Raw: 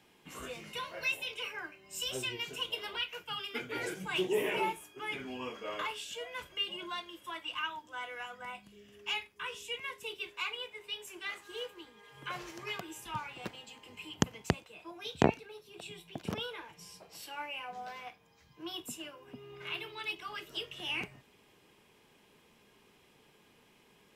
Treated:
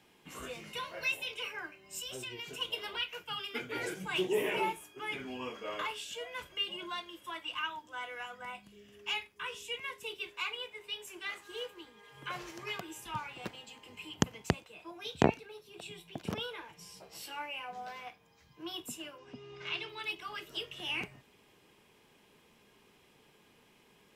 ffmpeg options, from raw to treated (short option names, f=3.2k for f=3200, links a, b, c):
-filter_complex "[0:a]asettb=1/sr,asplit=3[a][b][c];[a]atrim=end=1.994[d];[b]atrim=start=1.99:end=2.61,asetpts=PTS-STARTPTS,afade=t=in:d=0.004:c=qsin,afade=t=out:st=0.616:d=0.004:c=qsin,acompressor=threshold=-40dB:ratio=3:attack=3.2:release=140:knee=1:detection=peak[e];[c]atrim=start=2.606[f];[d][e]acrossfade=d=0.004:c1=hsin:c2=qsin[g];[g][f]acrossfade=d=0.004:c1=qsin:c2=hsin,asettb=1/sr,asplit=3[h][i][j];[h]atrim=end=16.954[k];[i]atrim=start=16.95:end=17.39,asetpts=PTS-STARTPTS,afade=t=in:d=0.004:c=qsin,afade=t=out:st=0.436:d=0.004:c=qsin,asplit=2[l][m];[m]adelay=15,volume=-3dB[n];[l][n]amix=inputs=2:normalize=0,atrim=end_sample=19404[o];[j]atrim=start=17.386[p];[k][o]acrossfade=d=0.004:c1=hsin:c2=qsin[q];[q][p]acrossfade=d=0.004:c1=qsin:c2=hsin,asettb=1/sr,asplit=3[r][s][t];[r]atrim=end=19.184[u];[s]atrim=start=19.18:end=19.89,asetpts=PTS-STARTPTS,afade=t=in:d=0.004:c=qsin,afade=t=out:st=0.706:d=0.004:c=qsin,lowpass=f=5.7k:t=q:w=2.3[v];[t]atrim=start=19.886[w];[u][v]acrossfade=d=0.004:c1=hsin:c2=qsin[x];[x][w]acrossfade=d=0.004:c1=qsin:c2=hsin"